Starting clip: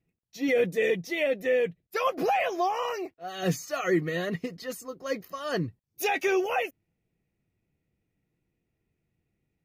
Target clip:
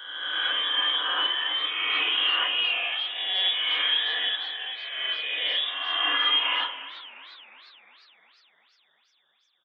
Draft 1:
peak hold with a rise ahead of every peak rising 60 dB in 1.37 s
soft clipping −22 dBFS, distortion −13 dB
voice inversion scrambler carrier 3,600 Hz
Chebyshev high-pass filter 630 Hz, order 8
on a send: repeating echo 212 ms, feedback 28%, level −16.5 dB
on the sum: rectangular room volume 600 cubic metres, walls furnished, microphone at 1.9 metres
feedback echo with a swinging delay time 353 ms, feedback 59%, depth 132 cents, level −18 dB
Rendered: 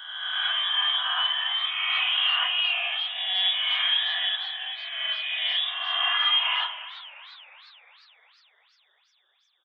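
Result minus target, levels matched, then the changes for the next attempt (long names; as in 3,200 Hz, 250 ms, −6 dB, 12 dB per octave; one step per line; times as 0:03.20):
500 Hz band −5.5 dB
change: Chebyshev high-pass filter 280 Hz, order 8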